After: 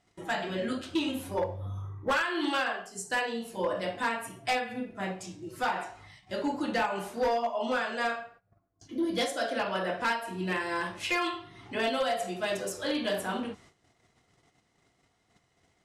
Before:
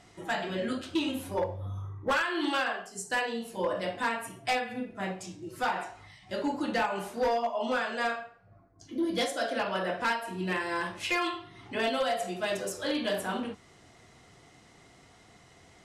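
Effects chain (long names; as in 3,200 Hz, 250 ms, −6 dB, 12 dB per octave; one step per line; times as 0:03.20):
noise gate −54 dBFS, range −15 dB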